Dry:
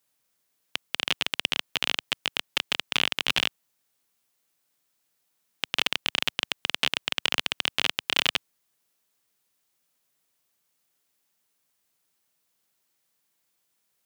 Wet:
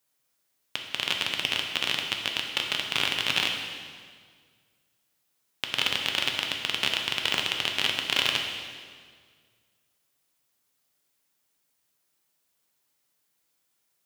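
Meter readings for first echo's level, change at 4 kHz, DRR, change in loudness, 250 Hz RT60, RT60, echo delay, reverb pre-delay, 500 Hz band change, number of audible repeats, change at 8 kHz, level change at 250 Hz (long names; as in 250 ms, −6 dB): no echo audible, +0.5 dB, 1.5 dB, 0.0 dB, 2.0 s, 1.8 s, no echo audible, 4 ms, +0.5 dB, no echo audible, +0.5 dB, +0.5 dB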